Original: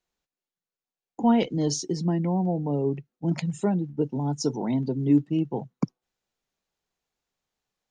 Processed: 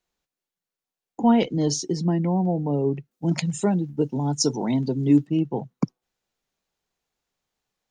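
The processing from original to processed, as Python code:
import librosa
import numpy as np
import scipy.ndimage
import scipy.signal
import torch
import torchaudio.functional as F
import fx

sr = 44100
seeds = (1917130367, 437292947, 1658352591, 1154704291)

y = fx.high_shelf(x, sr, hz=3300.0, db=9.5, at=(3.11, 5.27))
y = y * librosa.db_to_amplitude(2.5)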